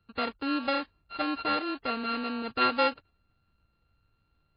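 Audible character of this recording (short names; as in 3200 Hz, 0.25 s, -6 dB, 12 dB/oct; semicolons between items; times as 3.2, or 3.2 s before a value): a buzz of ramps at a fixed pitch in blocks of 32 samples; MP3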